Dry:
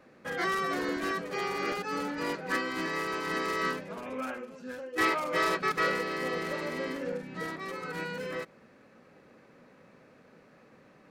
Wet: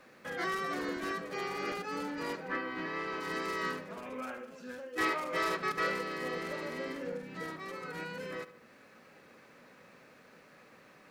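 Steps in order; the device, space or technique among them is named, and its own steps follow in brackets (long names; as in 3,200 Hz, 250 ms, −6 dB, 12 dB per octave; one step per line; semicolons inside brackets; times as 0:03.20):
0:02.47–0:03.19: low-pass filter 2,200 Hz → 4,700 Hz 12 dB per octave
noise-reduction cassette on a plain deck (one half of a high-frequency compander encoder only; tape wow and flutter 19 cents; white noise bed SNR 41 dB)
tape delay 75 ms, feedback 54%, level −14 dB, low-pass 5,500 Hz
level −4.5 dB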